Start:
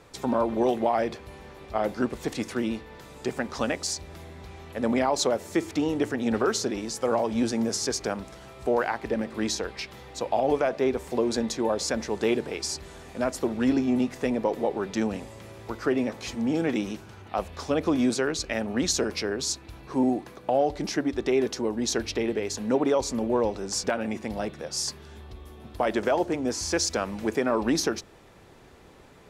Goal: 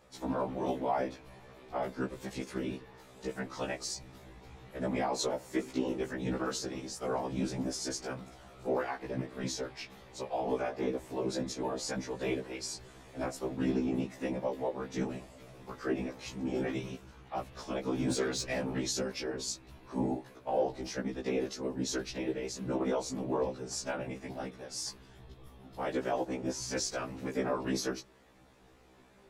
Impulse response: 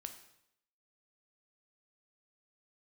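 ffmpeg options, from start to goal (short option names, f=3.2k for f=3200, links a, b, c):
-filter_complex "[0:a]asettb=1/sr,asplit=3[a][b][c];[a]atrim=end=18.084[d];[b]atrim=start=18.08:end=18.78,asetpts=PTS-STARTPTS,afade=t=in:d=0.004:c=qsin,afade=t=out:st=0.696:d=0.004:c=qsin,aeval=exprs='0.211*(cos(1*acos(clip(val(0)/0.211,-1,1)))-cos(1*PI/2))+0.0335*(cos(5*acos(clip(val(0)/0.211,-1,1)))-cos(5*PI/2))':c=same[e];[c]atrim=start=18.776[f];[d][e]acrossfade=d=0.004:c1=hsin:c2=qsin[g];[g][f]acrossfade=d=0.004:c1=qsin:c2=hsin,afftfilt=real='hypot(re,im)*cos(2*PI*random(0))':imag='hypot(re,im)*sin(2*PI*random(1))':win_size=512:overlap=0.75,afftfilt=real='re*1.73*eq(mod(b,3),0)':imag='im*1.73*eq(mod(b,3),0)':win_size=2048:overlap=0.75"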